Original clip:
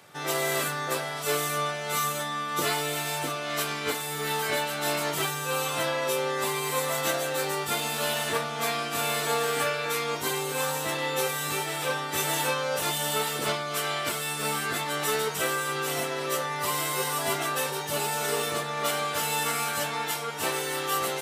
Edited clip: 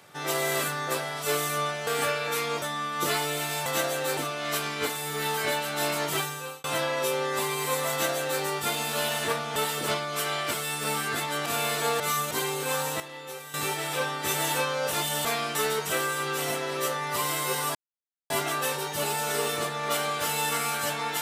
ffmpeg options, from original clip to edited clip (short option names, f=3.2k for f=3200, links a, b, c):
-filter_complex "[0:a]asplit=15[a][b][c][d][e][f][g][h][i][j][k][l][m][n][o];[a]atrim=end=1.872[p];[b]atrim=start=9.448:end=10.202[q];[c]atrim=start=2.178:end=3.222[r];[d]atrim=start=6.958:end=7.472[s];[e]atrim=start=3.218:end=5.69,asetpts=PTS-STARTPTS,afade=t=out:st=2.032:d=0.44[t];[f]atrim=start=5.69:end=8.612,asetpts=PTS-STARTPTS,afade=t=in:d=0.004:c=hsin[u];[g]atrim=start=13.138:end=15.042[v];[h]atrim=start=8.908:end=9.452[w];[i]atrim=start=1.868:end=2.182[x];[j]atrim=start=10.198:end=10.892[y];[k]atrim=start=10.888:end=11.432,asetpts=PTS-STARTPTS,volume=-12dB[z];[l]atrim=start=11.428:end=13.142[aa];[m]atrim=start=8.608:end=8.912[ab];[n]atrim=start=15.038:end=17.24,asetpts=PTS-STARTPTS,afade=t=out:st=2.198:d=0.004:c=hsin,apad=pad_dur=0.55[ac];[o]atrim=start=17.24,asetpts=PTS-STARTPTS,afade=t=in:d=0.004:c=hsin[ad];[p][q]acrossfade=d=0.004:c1=hsin:c2=hsin[ae];[ae][r]acrossfade=d=0.004:c1=hsin:c2=hsin[af];[af][s]acrossfade=d=0.004:c1=hsin:c2=hsin[ag];[t][u]concat=n=2:v=0:a=1[ah];[ag][ah]acrossfade=d=0.004:c1=hsin:c2=hsin[ai];[ai][v]acrossfade=d=0.004:c1=hsin:c2=hsin[aj];[aj][w]acrossfade=d=0.004:c1=hsin:c2=hsin[ak];[ak][x]acrossfade=d=0.004:c1=hsin:c2=hsin[al];[al][y]acrossfade=d=0.004:c1=hsin:c2=hsin[am];[am][z]acrossfade=d=0.004:c1=hsin:c2=hsin[an];[an][aa]acrossfade=d=0.004:c1=hsin:c2=hsin[ao];[ao][ab]acrossfade=d=0.004:c1=hsin:c2=hsin[ap];[ac][ad]concat=n=2:v=0:a=1[aq];[ap][aq]acrossfade=d=0.004:c1=hsin:c2=hsin"